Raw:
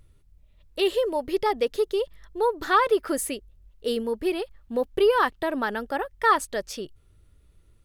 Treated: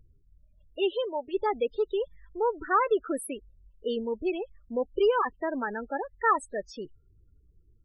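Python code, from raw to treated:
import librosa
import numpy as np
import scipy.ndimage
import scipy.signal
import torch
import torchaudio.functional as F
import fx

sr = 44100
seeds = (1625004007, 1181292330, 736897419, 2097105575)

y = fx.spec_topn(x, sr, count=16)
y = fx.riaa(y, sr, side='recording', at=(0.91, 1.33), fade=0.02)
y = F.gain(torch.from_numpy(y), -3.5).numpy()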